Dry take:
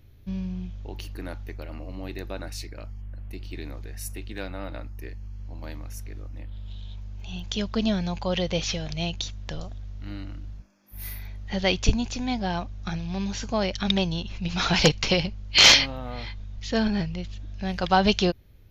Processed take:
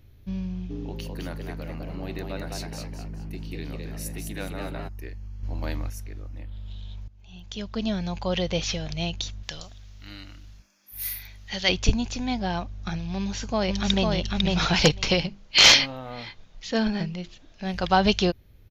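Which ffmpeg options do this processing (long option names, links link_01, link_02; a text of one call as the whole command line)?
ffmpeg -i in.wav -filter_complex "[0:a]asplit=3[link_01][link_02][link_03];[link_01]afade=type=out:start_time=0.69:duration=0.02[link_04];[link_02]asplit=5[link_05][link_06][link_07][link_08][link_09];[link_06]adelay=207,afreqshift=110,volume=-4dB[link_10];[link_07]adelay=414,afreqshift=220,volume=-13.1dB[link_11];[link_08]adelay=621,afreqshift=330,volume=-22.2dB[link_12];[link_09]adelay=828,afreqshift=440,volume=-31.4dB[link_13];[link_05][link_10][link_11][link_12][link_13]amix=inputs=5:normalize=0,afade=type=in:start_time=0.69:duration=0.02,afade=type=out:start_time=4.87:duration=0.02[link_14];[link_03]afade=type=in:start_time=4.87:duration=0.02[link_15];[link_04][link_14][link_15]amix=inputs=3:normalize=0,asettb=1/sr,asplit=3[link_16][link_17][link_18];[link_16]atrim=end=5.434[link_19];[link_17]atrim=start=5.43:end=5.9,asetpts=PTS-STARTPTS,afade=type=in:duration=0.004:curve=qsin,afade=type=out:start_time=0.466:duration=0.004:curve=qsin,acontrast=80[link_20];[link_18]atrim=start=5.896[link_21];[link_19][link_20]acrossfade=duration=0.004:curve1=hsin:curve2=qsin[link_22];[link_22][link_21]acrossfade=duration=0.004:curve1=qsin:curve2=hsin,asettb=1/sr,asplit=3[link_23][link_24][link_25];[link_23]atrim=end=9.434[link_26];[link_24]atrim=start=9.43:end=11.69,asetpts=PTS-STARTPTS,afade=type=in:duration=0.004:curve=qsin,afade=type=out:start_time=2.256:duration=0.004:curve=qsin,tiltshelf=frequency=1400:gain=-8.5[link_27];[link_25]atrim=start=11.686[link_28];[link_26][link_27]acrossfade=duration=0.004:curve1=hsin:curve2=qsin[link_29];[link_29][link_28]acrossfade=duration=0.004:curve1=qsin:curve2=hsin,asplit=2[link_30][link_31];[link_31]afade=type=in:start_time=13.18:duration=0.01,afade=type=out:start_time=14.15:duration=0.01,aecho=0:1:500|1000:0.794328|0.0794328[link_32];[link_30][link_32]amix=inputs=2:normalize=0,asettb=1/sr,asplit=3[link_33][link_34][link_35];[link_33]atrim=end=15.194[link_36];[link_34]atrim=start=15.19:end=17.74,asetpts=PTS-STARTPTS,afade=type=in:duration=0.004:curve=qsin,afade=type=out:start_time=2.546:duration=0.004:curve=qsin,bandreject=frequency=50:width_type=h:width=6,bandreject=frequency=100:width_type=h:width=6,bandreject=frequency=150:width_type=h:width=6,bandreject=frequency=200:width_type=h:width=6,bandreject=frequency=250:width_type=h:width=6,bandreject=frequency=300:width_type=h:width=6,bandreject=frequency=350:width_type=h:width=6,bandreject=frequency=400:width_type=h:width=6[link_37];[link_35]atrim=start=17.736[link_38];[link_36][link_37]acrossfade=duration=0.004:curve1=hsin:curve2=qsin[link_39];[link_39][link_38]acrossfade=duration=0.004:curve1=qsin:curve2=hsin,asplit=2[link_40][link_41];[link_40]atrim=end=7.08,asetpts=PTS-STARTPTS,afade=type=out:start_time=7.076:duration=0.004:curve=hsin:silence=0.125893[link_42];[link_41]atrim=start=7.08,asetpts=PTS-STARTPTS,afade=type=in:duration=1.2:silence=0.125893[link_43];[link_42][link_43]concat=n=2:v=0:a=1" out.wav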